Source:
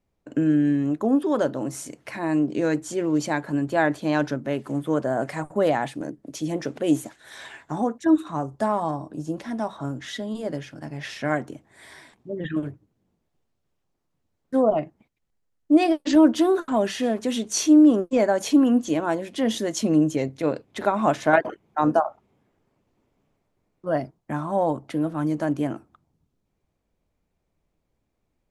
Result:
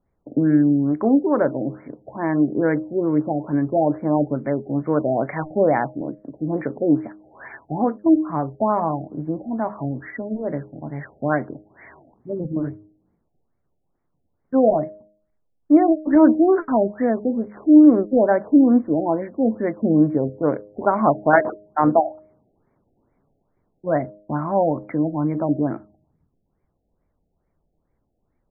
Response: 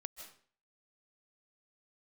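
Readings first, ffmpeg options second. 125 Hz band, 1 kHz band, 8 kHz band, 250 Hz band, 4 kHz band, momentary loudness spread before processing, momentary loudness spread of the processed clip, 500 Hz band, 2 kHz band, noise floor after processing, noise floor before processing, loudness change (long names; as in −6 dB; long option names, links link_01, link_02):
+4.0 dB, +3.5 dB, below −40 dB, +3.5 dB, below −40 dB, 13 LU, 14 LU, +3.5 dB, 0.0 dB, −72 dBFS, −76 dBFS, +3.5 dB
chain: -af "bandreject=frequency=103.7:width_type=h:width=4,bandreject=frequency=207.4:width_type=h:width=4,bandreject=frequency=311.1:width_type=h:width=4,bandreject=frequency=414.8:width_type=h:width=4,bandreject=frequency=518.5:width_type=h:width=4,bandreject=frequency=622.2:width_type=h:width=4,afftfilt=real='re*lt(b*sr/1024,800*pow(2400/800,0.5+0.5*sin(2*PI*2.3*pts/sr)))':imag='im*lt(b*sr/1024,800*pow(2400/800,0.5+0.5*sin(2*PI*2.3*pts/sr)))':win_size=1024:overlap=0.75,volume=4dB"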